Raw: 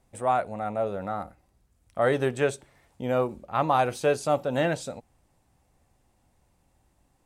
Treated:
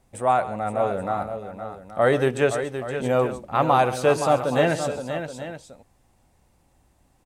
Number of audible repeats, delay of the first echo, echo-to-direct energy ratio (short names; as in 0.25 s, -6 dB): 3, 0.133 s, -7.0 dB